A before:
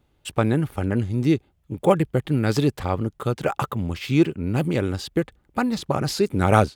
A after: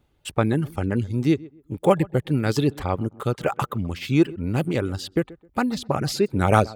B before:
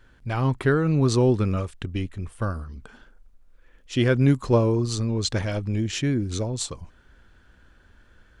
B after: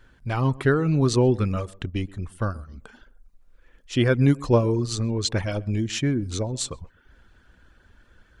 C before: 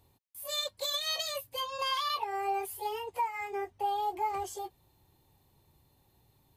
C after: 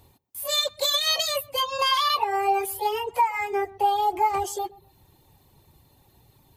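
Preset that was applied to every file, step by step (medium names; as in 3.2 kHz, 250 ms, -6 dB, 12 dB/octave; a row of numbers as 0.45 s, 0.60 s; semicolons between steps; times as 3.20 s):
reverb removal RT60 0.51 s; tape echo 128 ms, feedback 30%, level -19.5 dB, low-pass 1.2 kHz; normalise loudness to -24 LUFS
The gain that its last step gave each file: 0.0 dB, +1.0 dB, +10.0 dB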